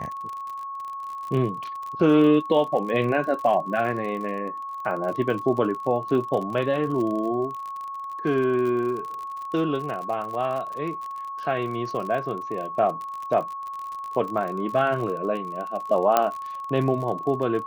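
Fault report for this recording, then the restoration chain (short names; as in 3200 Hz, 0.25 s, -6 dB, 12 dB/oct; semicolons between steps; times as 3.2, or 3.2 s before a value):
crackle 46/s -31 dBFS
tone 1100 Hz -31 dBFS
16.17 pop -6 dBFS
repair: de-click; notch 1100 Hz, Q 30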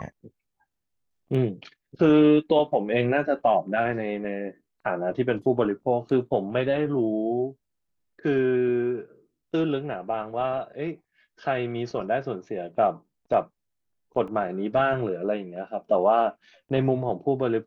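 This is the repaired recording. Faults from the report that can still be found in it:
none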